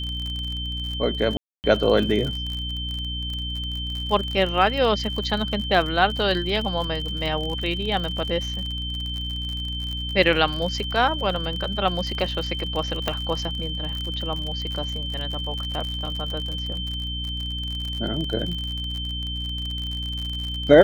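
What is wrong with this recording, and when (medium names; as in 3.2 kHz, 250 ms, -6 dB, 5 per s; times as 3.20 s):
crackle 48 per s -28 dBFS
hum 60 Hz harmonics 5 -31 dBFS
whine 3.1 kHz -30 dBFS
1.37–1.64 s: dropout 269 ms
13.08 s: pop -9 dBFS
16.06 s: dropout 4.6 ms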